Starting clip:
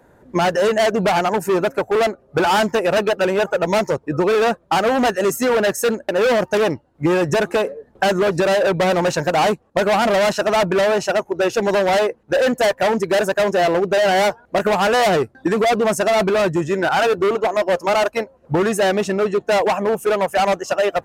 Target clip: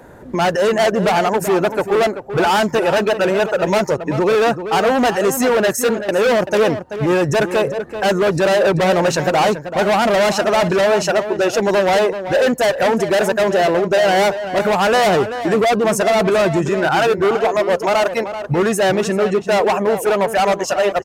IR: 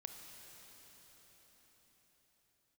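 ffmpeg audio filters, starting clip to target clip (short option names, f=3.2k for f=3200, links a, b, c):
-filter_complex "[0:a]asplit=2[a][b];[b]acompressor=threshold=-30dB:ratio=6,volume=1dB[c];[a][c]amix=inputs=2:normalize=0,alimiter=limit=-15.5dB:level=0:latency=1:release=68,asplit=2[d][e];[e]adelay=384.8,volume=-10dB,highshelf=f=4k:g=-8.66[f];[d][f]amix=inputs=2:normalize=0,volume=4dB"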